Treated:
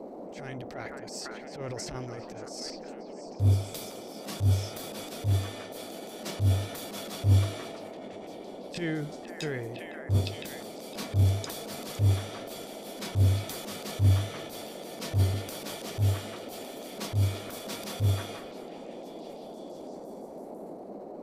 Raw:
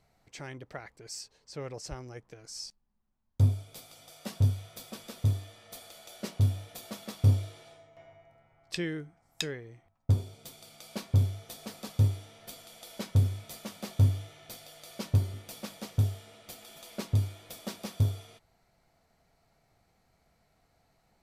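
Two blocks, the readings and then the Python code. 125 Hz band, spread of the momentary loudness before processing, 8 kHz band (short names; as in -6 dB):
+1.5 dB, 19 LU, +4.0 dB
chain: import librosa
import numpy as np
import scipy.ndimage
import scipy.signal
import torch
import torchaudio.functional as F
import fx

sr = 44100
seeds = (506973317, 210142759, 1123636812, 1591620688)

y = fx.echo_stepped(x, sr, ms=509, hz=1400.0, octaves=0.7, feedback_pct=70, wet_db=-5.5)
y = fx.transient(y, sr, attack_db=-12, sustain_db=8)
y = fx.dmg_noise_band(y, sr, seeds[0], low_hz=190.0, high_hz=710.0, level_db=-45.0)
y = F.gain(torch.from_numpy(y), 2.5).numpy()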